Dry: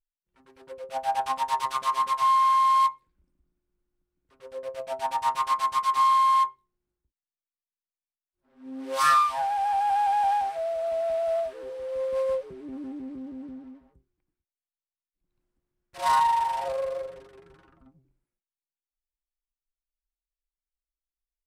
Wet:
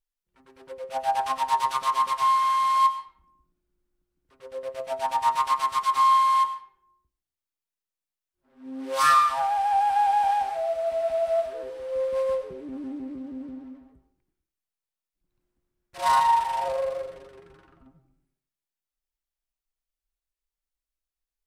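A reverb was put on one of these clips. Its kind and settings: algorithmic reverb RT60 0.6 s, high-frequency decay 0.65×, pre-delay 60 ms, DRR 11 dB; trim +1.5 dB

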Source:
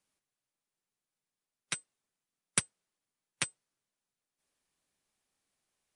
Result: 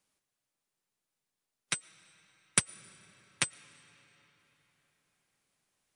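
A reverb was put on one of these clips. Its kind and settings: algorithmic reverb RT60 4.4 s, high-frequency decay 0.75×, pre-delay 70 ms, DRR 19 dB; trim +3 dB

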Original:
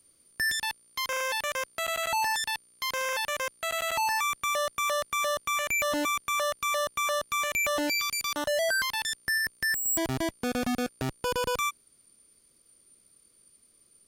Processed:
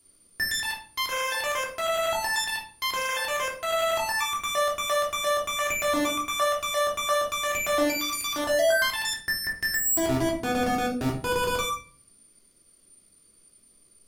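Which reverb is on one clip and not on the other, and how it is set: simulated room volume 410 m³, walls furnished, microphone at 3.2 m; trim -2 dB

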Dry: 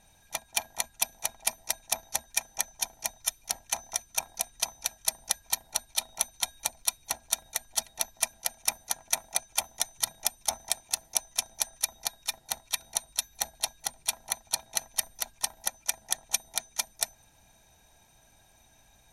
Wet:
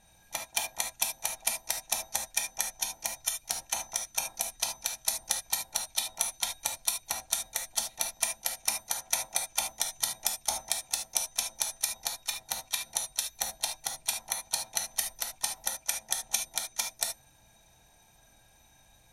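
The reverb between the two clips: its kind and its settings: gated-style reverb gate 100 ms flat, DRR 2.5 dB; trim -2 dB

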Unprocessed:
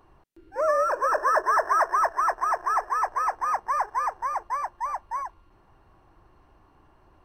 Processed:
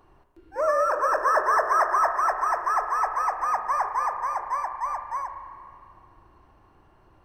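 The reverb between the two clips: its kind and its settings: spring tank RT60 2.4 s, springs 34/50 ms, chirp 55 ms, DRR 6 dB

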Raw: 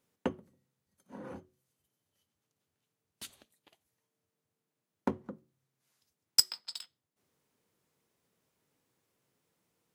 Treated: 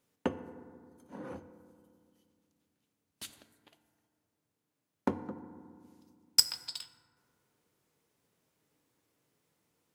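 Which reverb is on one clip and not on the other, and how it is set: FDN reverb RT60 2.1 s, low-frequency decay 1.35×, high-frequency decay 0.35×, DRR 10 dB; trim +1 dB

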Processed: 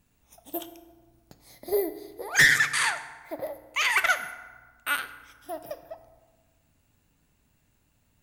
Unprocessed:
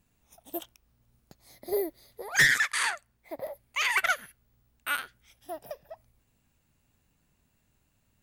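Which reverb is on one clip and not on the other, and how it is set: FDN reverb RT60 1.4 s, low-frequency decay 1.05×, high-frequency decay 0.55×, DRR 9 dB; trim +2.5 dB

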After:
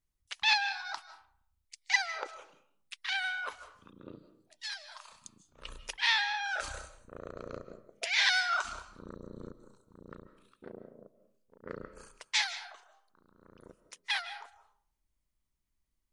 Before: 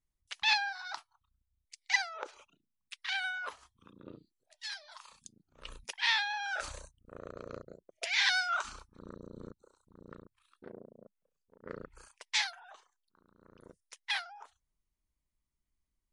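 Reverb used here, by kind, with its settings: algorithmic reverb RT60 0.58 s, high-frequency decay 0.6×, pre-delay 115 ms, DRR 12 dB; trim +1.5 dB

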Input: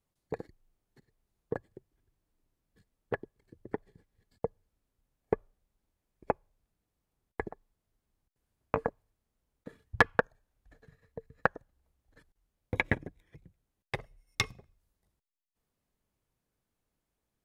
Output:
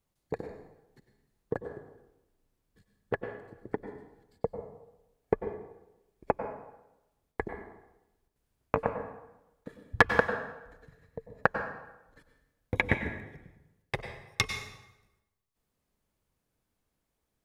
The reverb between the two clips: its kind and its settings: plate-style reverb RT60 0.94 s, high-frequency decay 0.8×, pre-delay 85 ms, DRR 6.5 dB; trim +2 dB

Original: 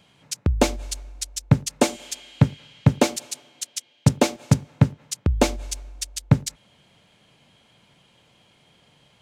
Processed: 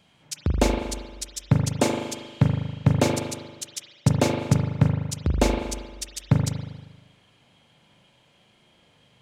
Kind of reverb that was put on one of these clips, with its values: spring tank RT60 1.2 s, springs 39 ms, chirp 35 ms, DRR 1.5 dB; trim -3.5 dB

